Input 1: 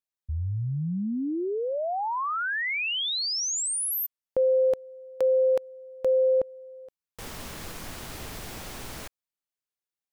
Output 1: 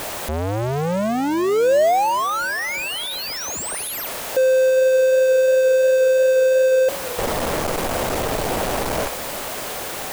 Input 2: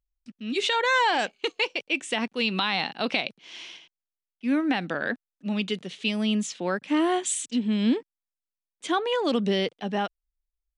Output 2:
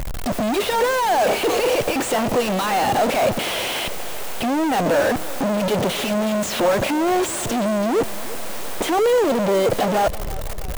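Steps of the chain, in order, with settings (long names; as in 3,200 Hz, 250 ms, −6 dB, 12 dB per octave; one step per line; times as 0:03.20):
sign of each sample alone
parametric band 590 Hz +12 dB 1.6 octaves
in parallel at −7 dB: sample-rate reduction 7,200 Hz, jitter 0%
on the sum: feedback echo with a swinging delay time 329 ms, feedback 59%, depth 87 cents, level −18 dB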